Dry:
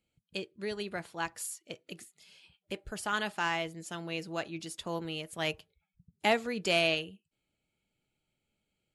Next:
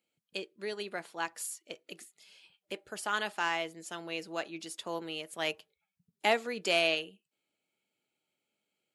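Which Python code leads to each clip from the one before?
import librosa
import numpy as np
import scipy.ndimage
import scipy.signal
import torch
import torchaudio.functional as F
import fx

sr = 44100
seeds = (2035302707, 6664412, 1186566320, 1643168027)

y = scipy.signal.sosfilt(scipy.signal.butter(2, 290.0, 'highpass', fs=sr, output='sos'), x)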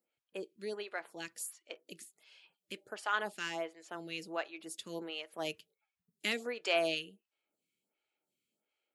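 y = fx.stagger_phaser(x, sr, hz=1.4)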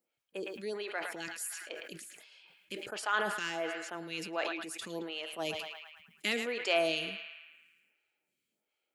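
y = fx.echo_banded(x, sr, ms=110, feedback_pct=70, hz=1800.0, wet_db=-12.0)
y = fx.sustainer(y, sr, db_per_s=44.0)
y = y * 10.0 ** (1.5 / 20.0)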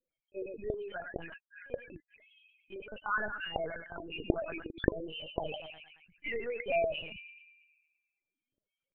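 y = fx.spec_topn(x, sr, count=8)
y = fx.lpc_vocoder(y, sr, seeds[0], excitation='pitch_kept', order=8)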